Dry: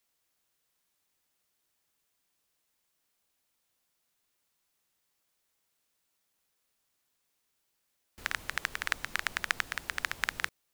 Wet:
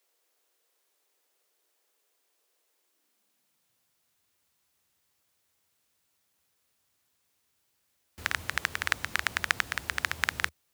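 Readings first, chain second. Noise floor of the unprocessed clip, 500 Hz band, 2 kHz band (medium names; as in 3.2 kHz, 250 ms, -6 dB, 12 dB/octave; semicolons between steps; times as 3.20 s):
-79 dBFS, +3.5 dB, +3.5 dB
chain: high-pass sweep 430 Hz -> 77 Hz, 2.71–4.05 s; trim +3.5 dB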